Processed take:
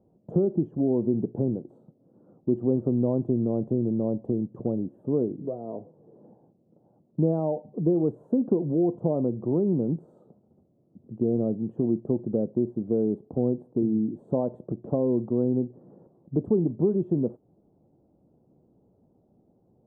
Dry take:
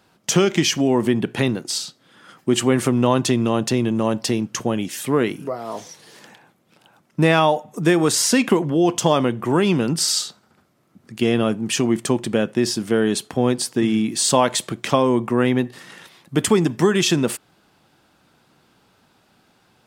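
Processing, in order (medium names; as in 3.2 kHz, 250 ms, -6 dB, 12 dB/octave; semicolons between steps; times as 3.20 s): inverse Chebyshev low-pass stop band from 2 kHz, stop band 60 dB; in parallel at +2 dB: compression, threshold -28 dBFS, peak gain reduction 15.5 dB; on the sum: trim -8 dB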